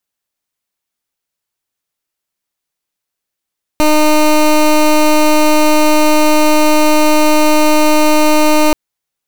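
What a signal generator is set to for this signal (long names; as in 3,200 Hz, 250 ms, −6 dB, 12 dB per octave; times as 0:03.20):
pulse wave 305 Hz, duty 18% −8.5 dBFS 4.93 s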